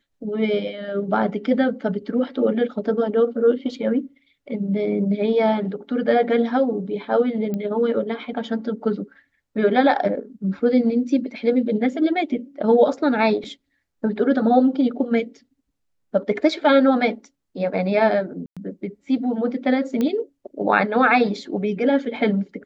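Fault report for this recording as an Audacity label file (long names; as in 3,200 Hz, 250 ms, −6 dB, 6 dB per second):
7.540000	7.540000	click −16 dBFS
18.460000	18.570000	drop-out 106 ms
20.010000	20.010000	click −12 dBFS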